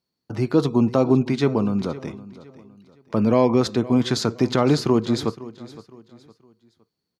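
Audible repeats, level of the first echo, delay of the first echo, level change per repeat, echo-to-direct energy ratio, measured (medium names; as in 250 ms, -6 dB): 2, -18.0 dB, 513 ms, -9.0 dB, -17.5 dB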